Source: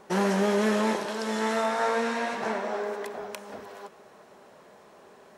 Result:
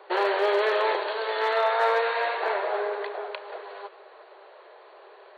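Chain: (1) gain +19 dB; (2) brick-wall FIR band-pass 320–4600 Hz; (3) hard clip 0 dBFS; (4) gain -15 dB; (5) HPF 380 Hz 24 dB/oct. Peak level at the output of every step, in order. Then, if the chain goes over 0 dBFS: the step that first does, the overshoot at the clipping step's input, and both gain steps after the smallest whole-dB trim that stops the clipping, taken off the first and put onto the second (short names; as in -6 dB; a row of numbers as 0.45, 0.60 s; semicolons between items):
+4.5, +3.5, 0.0, -15.0, -12.0 dBFS; step 1, 3.5 dB; step 1 +15 dB, step 4 -11 dB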